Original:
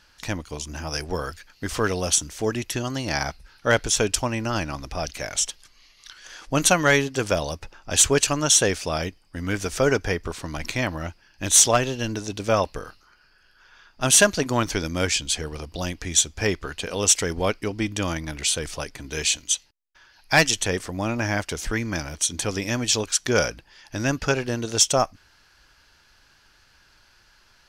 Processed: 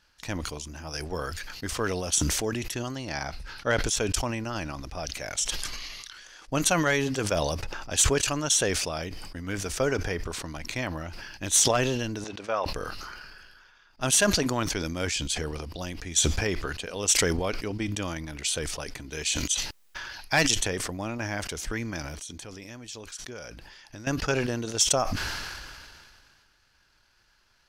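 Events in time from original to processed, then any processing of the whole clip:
2.95–3.78 high shelf 9900 Hz -8.5 dB
12.24–12.66 band-pass 1200 Hz, Q 0.66
22.02–24.07 compressor 2.5:1, threshold -37 dBFS
whole clip: transient shaper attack +4 dB, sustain -5 dB; sustainer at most 27 dB/s; gain -8.5 dB

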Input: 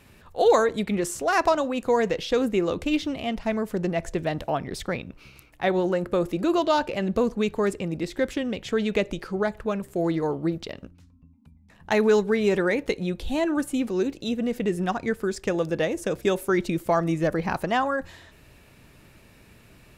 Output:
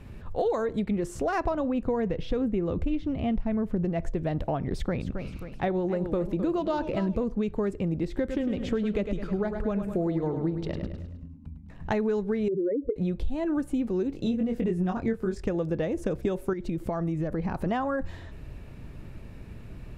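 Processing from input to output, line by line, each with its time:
1.44–3.85 tone controls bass +5 dB, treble -7 dB
4.71–7.24 warbling echo 0.264 s, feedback 44%, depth 153 cents, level -12 dB
8.19–11.97 feedback echo 0.104 s, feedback 46%, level -9 dB
12.48–12.96 spectral contrast raised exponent 3.8
14.1–15.44 doubler 22 ms -3 dB
16.53–17.66 compressor 2.5:1, threshold -33 dBFS
whole clip: tilt -3 dB/oct; compressor 5:1, threshold -27 dBFS; gain +1.5 dB

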